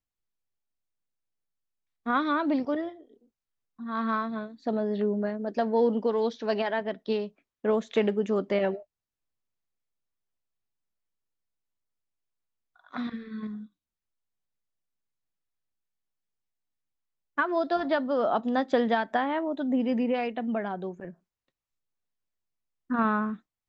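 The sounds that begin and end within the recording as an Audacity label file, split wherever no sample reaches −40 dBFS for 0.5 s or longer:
2.060000	2.920000	sound
3.800000	8.800000	sound
12.930000	13.640000	sound
17.380000	21.110000	sound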